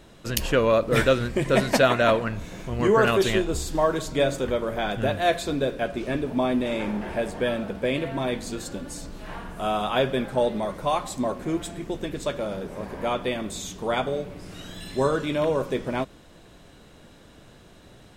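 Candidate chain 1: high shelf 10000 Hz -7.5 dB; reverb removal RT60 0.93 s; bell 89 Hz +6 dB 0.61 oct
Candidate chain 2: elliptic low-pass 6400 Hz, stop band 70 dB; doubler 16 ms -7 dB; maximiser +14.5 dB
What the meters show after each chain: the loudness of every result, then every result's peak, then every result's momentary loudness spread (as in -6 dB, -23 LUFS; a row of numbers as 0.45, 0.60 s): -26.5, -13.0 LUFS; -7.5, -1.0 dBFS; 14, 10 LU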